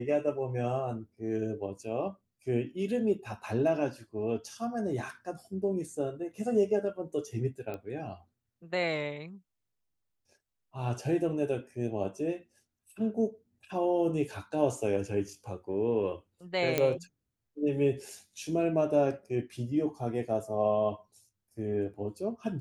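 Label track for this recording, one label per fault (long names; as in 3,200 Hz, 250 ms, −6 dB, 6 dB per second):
7.740000	7.740000	click −26 dBFS
16.780000	16.780000	click −12 dBFS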